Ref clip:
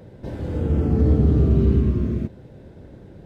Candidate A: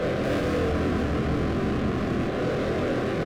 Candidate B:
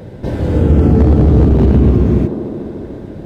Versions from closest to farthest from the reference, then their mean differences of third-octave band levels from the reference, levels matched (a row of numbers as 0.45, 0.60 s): B, A; 3.0, 14.0 dB